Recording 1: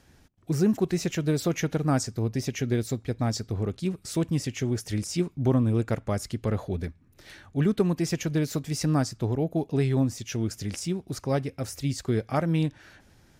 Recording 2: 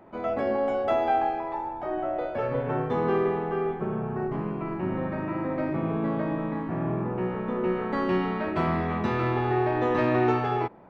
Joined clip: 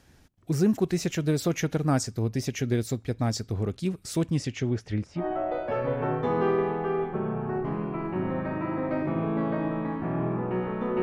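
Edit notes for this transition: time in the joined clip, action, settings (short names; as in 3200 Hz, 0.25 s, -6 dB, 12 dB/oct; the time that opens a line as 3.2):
recording 1
4.26–5.25 LPF 10000 Hz -> 1300 Hz
5.2 switch to recording 2 from 1.87 s, crossfade 0.10 s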